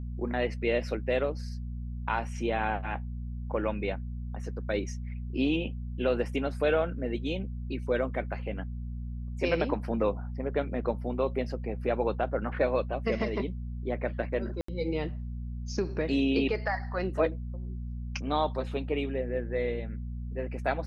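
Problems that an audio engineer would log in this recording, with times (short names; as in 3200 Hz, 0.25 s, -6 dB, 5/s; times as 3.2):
hum 60 Hz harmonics 4 -36 dBFS
14.61–14.68 gap 74 ms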